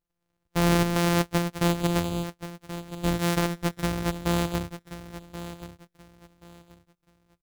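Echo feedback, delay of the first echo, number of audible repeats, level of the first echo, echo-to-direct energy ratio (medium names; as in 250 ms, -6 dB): 25%, 1080 ms, 2, -13.0 dB, -12.5 dB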